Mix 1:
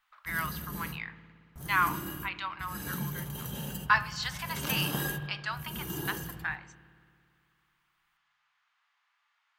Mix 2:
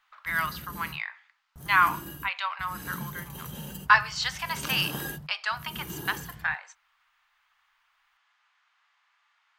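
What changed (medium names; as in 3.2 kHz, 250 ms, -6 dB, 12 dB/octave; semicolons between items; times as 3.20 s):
speech +6.0 dB; reverb: off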